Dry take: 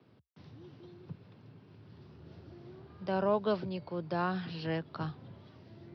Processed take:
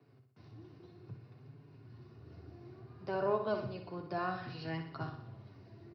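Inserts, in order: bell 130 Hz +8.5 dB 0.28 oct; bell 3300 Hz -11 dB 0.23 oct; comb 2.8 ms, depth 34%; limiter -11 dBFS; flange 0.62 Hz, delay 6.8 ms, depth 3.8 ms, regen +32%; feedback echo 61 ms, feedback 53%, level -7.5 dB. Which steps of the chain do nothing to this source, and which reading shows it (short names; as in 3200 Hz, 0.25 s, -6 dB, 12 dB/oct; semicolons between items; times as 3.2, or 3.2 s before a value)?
limiter -11 dBFS: input peak -18.5 dBFS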